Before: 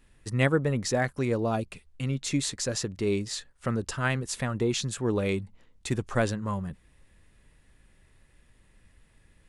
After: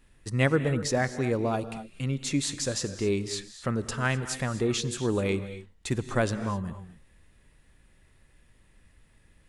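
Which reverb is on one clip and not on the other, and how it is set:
reverb whose tail is shaped and stops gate 280 ms rising, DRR 11.5 dB

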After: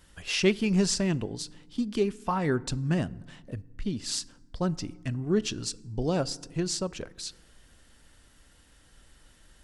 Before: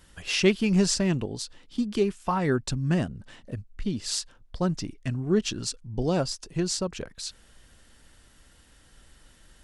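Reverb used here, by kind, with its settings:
feedback delay network reverb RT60 1.2 s, low-frequency decay 1.55×, high-frequency decay 0.5×, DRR 19.5 dB
level −2 dB

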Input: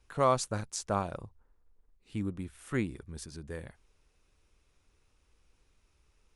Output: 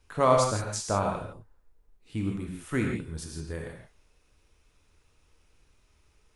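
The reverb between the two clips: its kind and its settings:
reverb whose tail is shaped and stops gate 190 ms flat, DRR 0.5 dB
level +2.5 dB

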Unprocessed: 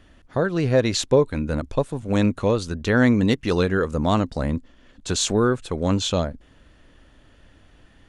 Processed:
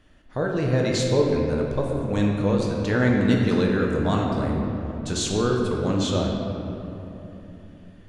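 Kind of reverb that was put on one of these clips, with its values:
rectangular room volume 160 cubic metres, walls hard, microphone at 0.5 metres
level −5.5 dB

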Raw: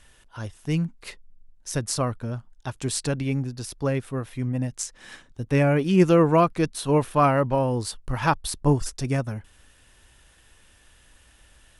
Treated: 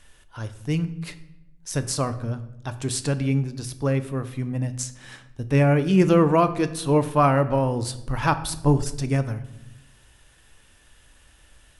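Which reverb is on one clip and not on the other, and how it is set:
rectangular room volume 270 cubic metres, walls mixed, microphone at 0.34 metres

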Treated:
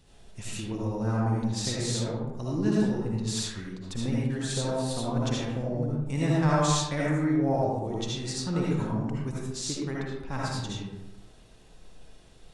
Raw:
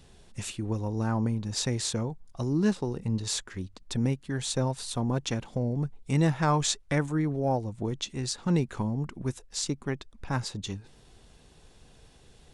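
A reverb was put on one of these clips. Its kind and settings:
comb and all-pass reverb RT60 0.99 s, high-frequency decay 0.5×, pre-delay 35 ms, DRR −6 dB
level −5.5 dB

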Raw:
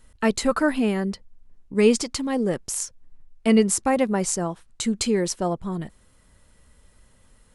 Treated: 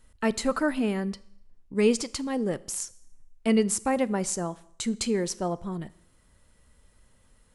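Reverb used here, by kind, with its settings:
four-comb reverb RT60 0.71 s, combs from 27 ms, DRR 19 dB
level −4.5 dB

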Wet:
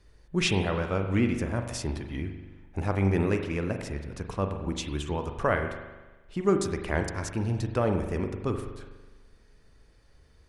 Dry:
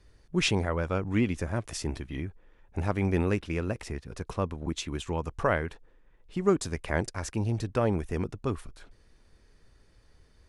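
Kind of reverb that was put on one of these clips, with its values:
spring reverb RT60 1.2 s, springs 41 ms, chirp 65 ms, DRR 5.5 dB

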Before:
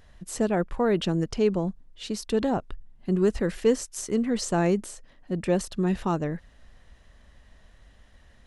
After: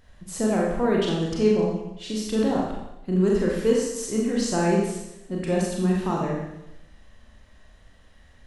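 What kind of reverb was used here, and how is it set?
four-comb reverb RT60 0.9 s, combs from 29 ms, DRR −3 dB
level −2.5 dB

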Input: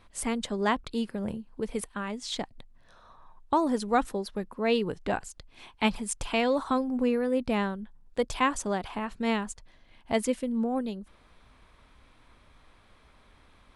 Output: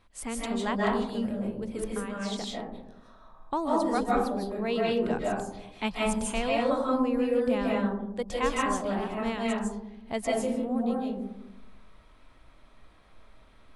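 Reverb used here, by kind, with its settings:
comb and all-pass reverb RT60 0.9 s, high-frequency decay 0.25×, pre-delay 115 ms, DRR −4 dB
level −5.5 dB

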